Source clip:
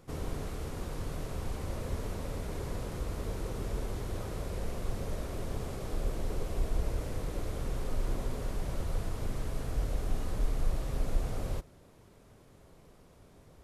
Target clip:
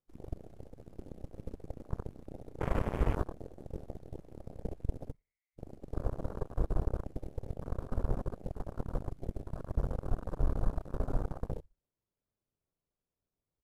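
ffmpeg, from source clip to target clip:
ffmpeg -i in.wav -filter_complex "[0:a]asplit=3[link_01][link_02][link_03];[link_01]afade=type=out:start_time=2.6:duration=0.02[link_04];[link_02]acontrast=73,afade=type=in:start_time=2.6:duration=0.02,afade=type=out:start_time=3.23:duration=0.02[link_05];[link_03]afade=type=in:start_time=3.23:duration=0.02[link_06];[link_04][link_05][link_06]amix=inputs=3:normalize=0,asplit=3[link_07][link_08][link_09];[link_07]afade=type=out:start_time=5.11:duration=0.02[link_10];[link_08]asuperpass=centerf=2100:order=4:qfactor=7.6,afade=type=in:start_time=5.11:duration=0.02,afade=type=out:start_time=5.57:duration=0.02[link_11];[link_09]afade=type=in:start_time=5.57:duration=0.02[link_12];[link_10][link_11][link_12]amix=inputs=3:normalize=0,aecho=1:1:65|130|195|260:0.237|0.0996|0.0418|0.0176,aeval=exprs='0.158*(cos(1*acos(clip(val(0)/0.158,-1,1)))-cos(1*PI/2))+0.00708*(cos(4*acos(clip(val(0)/0.158,-1,1)))-cos(4*PI/2))+0.00355*(cos(5*acos(clip(val(0)/0.158,-1,1)))-cos(5*PI/2))+0.02*(cos(6*acos(clip(val(0)/0.158,-1,1)))-cos(6*PI/2))+0.0282*(cos(7*acos(clip(val(0)/0.158,-1,1)))-cos(7*PI/2))':channel_layout=same,afwtdn=0.00708,volume=-1.5dB" out.wav

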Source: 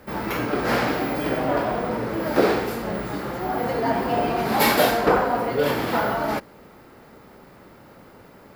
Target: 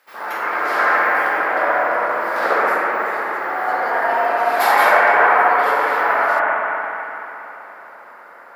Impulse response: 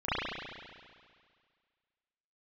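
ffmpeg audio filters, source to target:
-filter_complex "[0:a]highpass=1200[link_01];[1:a]atrim=start_sample=2205,asetrate=23814,aresample=44100[link_02];[link_01][link_02]afir=irnorm=-1:irlink=0,volume=-2dB"

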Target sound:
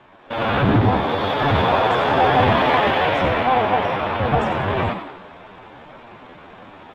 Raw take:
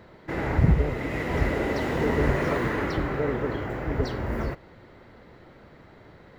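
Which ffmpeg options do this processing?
ffmpeg -i in.wav -filter_complex "[0:a]adynamicequalizer=threshold=0.01:dfrequency=120:dqfactor=3.2:tfrequency=120:tqfactor=3.2:attack=5:release=100:ratio=0.375:range=2:mode=cutabove:tftype=bell,aresample=16000,asoftclip=type=hard:threshold=-18dB,aresample=44100,acrusher=samples=5:mix=1:aa=0.000001,atempo=0.53,lowpass=1300,lowshelf=frequency=270:gain=-7,asplit=6[link_01][link_02][link_03][link_04][link_05][link_06];[link_02]adelay=160,afreqshift=53,volume=-9dB[link_07];[link_03]adelay=320,afreqshift=106,volume=-15.4dB[link_08];[link_04]adelay=480,afreqshift=159,volume=-21.8dB[link_09];[link_05]adelay=640,afreqshift=212,volume=-28.1dB[link_10];[link_06]adelay=800,afreqshift=265,volume=-34.5dB[link_11];[link_01][link_07][link_08][link_09][link_10][link_11]amix=inputs=6:normalize=0,asetrate=76440,aresample=44100,dynaudnorm=framelen=140:gausssize=5:maxgain=7.5dB,volume=4.5dB" out.wav

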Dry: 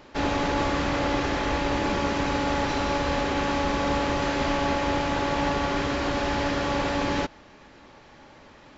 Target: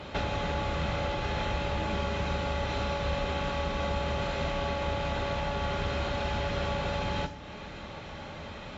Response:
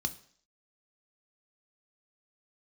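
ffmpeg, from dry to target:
-filter_complex "[0:a]acompressor=threshold=-37dB:ratio=8[link_01];[1:a]atrim=start_sample=2205,asetrate=25137,aresample=44100[link_02];[link_01][link_02]afir=irnorm=-1:irlink=0"

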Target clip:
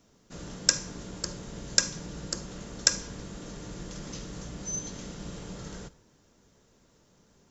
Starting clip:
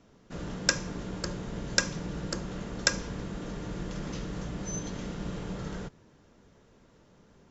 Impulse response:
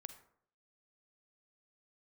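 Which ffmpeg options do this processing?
-filter_complex "[0:a]bass=frequency=250:gain=0,treble=frequency=4000:gain=9,asplit=2[link_01][link_02];[1:a]atrim=start_sample=2205,highshelf=frequency=5100:gain=10[link_03];[link_02][link_03]afir=irnorm=-1:irlink=0,volume=0dB[link_04];[link_01][link_04]amix=inputs=2:normalize=0,volume=-8dB"

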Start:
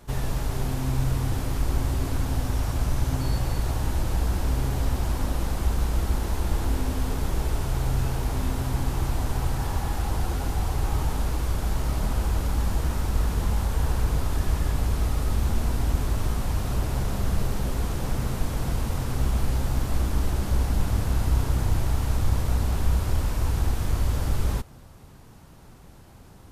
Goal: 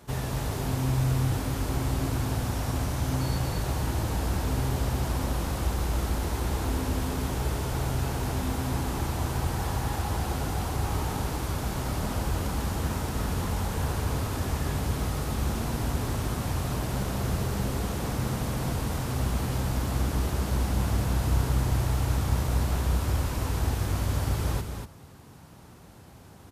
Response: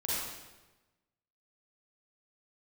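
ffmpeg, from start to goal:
-filter_complex "[0:a]highpass=73,asplit=2[link_01][link_02];[link_02]aecho=0:1:238:0.473[link_03];[link_01][link_03]amix=inputs=2:normalize=0"

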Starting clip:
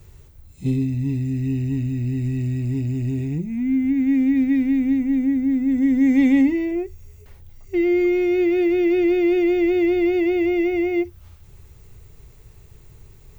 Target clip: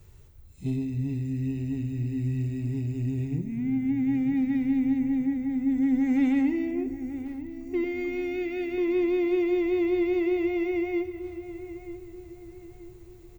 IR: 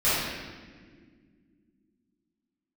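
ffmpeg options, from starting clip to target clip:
-filter_complex "[0:a]asettb=1/sr,asplit=3[link_01][link_02][link_03];[link_01]atrim=end=7.844[link_04];[link_02]atrim=start=7.84:end=8.78,asetpts=PTS-STARTPTS,afade=type=in:duration=0.004:curve=qsin,afade=type=out:start_time=0.936:duration=0.004:curve=qsin,equalizer=frequency=250:width=1.2:gain=-12[link_05];[link_03]atrim=start=8.776[link_06];[link_04][link_05]acrossfade=duration=0.004:curve1=hsin:curve2=qsin[link_07];[link_07][link_06]acrossfade=duration=0.004:curve1=qsin:curve2=hsin,asoftclip=type=tanh:threshold=-10.5dB,asplit=2[link_08][link_09];[link_09]adelay=933,lowpass=frequency=1800:poles=1,volume=-12dB,asplit=2[link_10][link_11];[link_11]adelay=933,lowpass=frequency=1800:poles=1,volume=0.44,asplit=2[link_12][link_13];[link_13]adelay=933,lowpass=frequency=1800:poles=1,volume=0.44,asplit=2[link_14][link_15];[link_15]adelay=933,lowpass=frequency=1800:poles=1,volume=0.44[link_16];[link_08][link_10][link_12][link_14][link_16]amix=inputs=5:normalize=0,asplit=2[link_17][link_18];[1:a]atrim=start_sample=2205,asetrate=33075,aresample=44100[link_19];[link_18][link_19]afir=irnorm=-1:irlink=0,volume=-29.5dB[link_20];[link_17][link_20]amix=inputs=2:normalize=0,volume=-6.5dB"

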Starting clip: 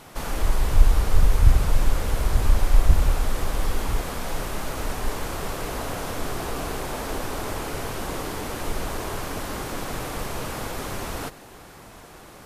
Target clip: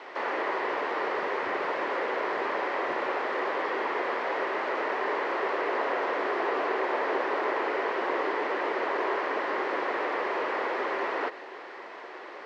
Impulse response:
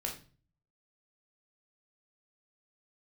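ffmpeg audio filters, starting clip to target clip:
-filter_complex "[0:a]highpass=frequency=350:width=0.5412,highpass=frequency=350:width=1.3066,equalizer=frequency=380:width_type=q:width=4:gain=6,equalizer=frequency=550:width_type=q:width=4:gain=3,equalizer=frequency=1000:width_type=q:width=4:gain=5,equalizer=frequency=1900:width_type=q:width=4:gain=9,equalizer=frequency=3600:width_type=q:width=4:gain=-4,lowpass=frequency=4100:width=0.5412,lowpass=frequency=4100:width=1.3066,acrossover=split=2600[link_01][link_02];[link_02]acompressor=threshold=-49dB:ratio=4:attack=1:release=60[link_03];[link_01][link_03]amix=inputs=2:normalize=0,volume=1.5dB"

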